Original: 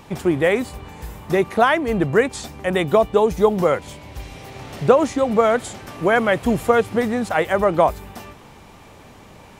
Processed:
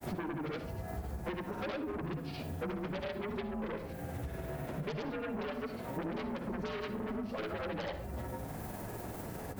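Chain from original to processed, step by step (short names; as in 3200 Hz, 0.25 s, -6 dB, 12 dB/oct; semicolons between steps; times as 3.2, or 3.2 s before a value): inharmonic rescaling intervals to 85%; LPF 1100 Hz 6 dB/oct; added noise violet -54 dBFS; in parallel at -12 dB: sine folder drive 18 dB, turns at -4.5 dBFS; on the sum: grains, pitch spread up and down by 0 st; on a send at -9.5 dB: reverb RT60 0.40 s, pre-delay 46 ms; on the sum: compressor 8:1, threshold -31 dBFS, peak gain reduction 20 dB; gain -5.5 dB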